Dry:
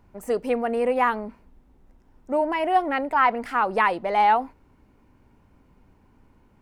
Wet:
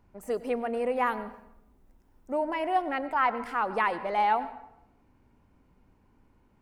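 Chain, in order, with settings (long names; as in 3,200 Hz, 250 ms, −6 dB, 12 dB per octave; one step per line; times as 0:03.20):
0:01.06–0:02.33: high-shelf EQ 8,600 Hz +11 dB
convolution reverb RT60 0.80 s, pre-delay 89 ms, DRR 14 dB
level −6 dB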